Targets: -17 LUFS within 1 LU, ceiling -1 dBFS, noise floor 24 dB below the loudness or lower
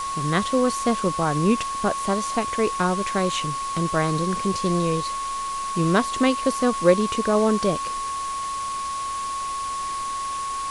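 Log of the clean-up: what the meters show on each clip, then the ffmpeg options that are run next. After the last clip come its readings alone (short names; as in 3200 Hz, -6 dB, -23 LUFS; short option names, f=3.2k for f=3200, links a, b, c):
steady tone 1100 Hz; tone level -26 dBFS; noise floor -29 dBFS; noise floor target -48 dBFS; loudness -23.5 LUFS; peak -4.5 dBFS; loudness target -17.0 LUFS
-> -af "bandreject=f=1.1k:w=30"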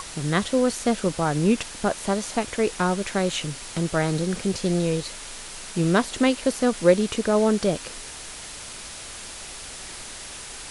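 steady tone none; noise floor -38 dBFS; noise floor target -48 dBFS
-> -af "afftdn=nr=10:nf=-38"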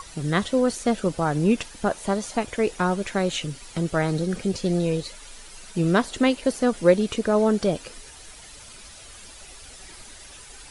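noise floor -45 dBFS; noise floor target -48 dBFS
-> -af "afftdn=nr=6:nf=-45"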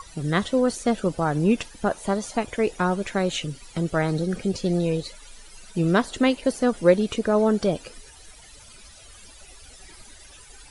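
noise floor -48 dBFS; loudness -24.0 LUFS; peak -5.0 dBFS; loudness target -17.0 LUFS
-> -af "volume=7dB,alimiter=limit=-1dB:level=0:latency=1"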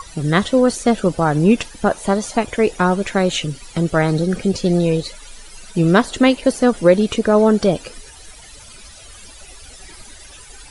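loudness -17.0 LUFS; peak -1.0 dBFS; noise floor -41 dBFS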